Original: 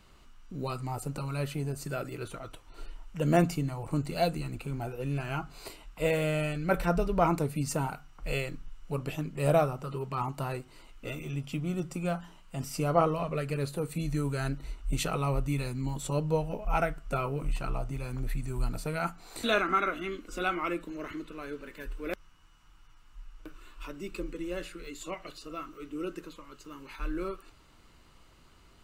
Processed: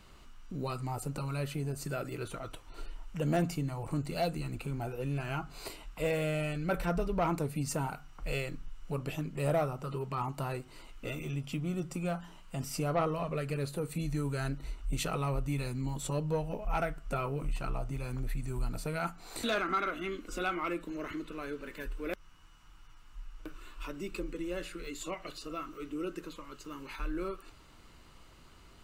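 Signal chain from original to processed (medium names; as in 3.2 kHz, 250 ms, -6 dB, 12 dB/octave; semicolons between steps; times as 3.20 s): in parallel at +1 dB: compression, threshold -39 dBFS, peak gain reduction 19 dB; on the sum: saturation -17 dBFS, distortion -19 dB; trim -4.5 dB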